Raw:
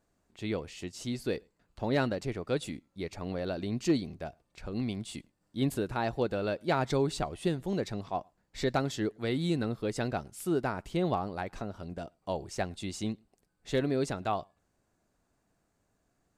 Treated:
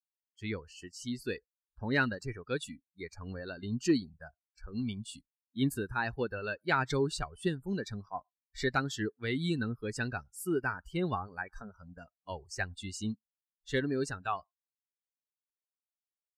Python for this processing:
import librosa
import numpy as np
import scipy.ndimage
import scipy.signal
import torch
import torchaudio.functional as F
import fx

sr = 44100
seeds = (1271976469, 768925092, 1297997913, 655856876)

y = fx.bin_expand(x, sr, power=1.5)
y = fx.graphic_eq_15(y, sr, hz=(160, 630, 1600), db=(-3, -10, 8))
y = fx.noise_reduce_blind(y, sr, reduce_db=27)
y = F.gain(torch.from_numpy(y), 2.5).numpy()